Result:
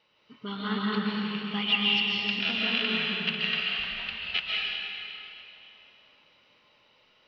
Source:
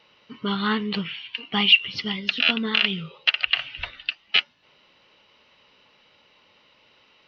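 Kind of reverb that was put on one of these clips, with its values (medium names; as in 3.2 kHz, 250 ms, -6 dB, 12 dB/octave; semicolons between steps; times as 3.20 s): algorithmic reverb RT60 3 s, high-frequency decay 0.9×, pre-delay 100 ms, DRR -5 dB; trim -10.5 dB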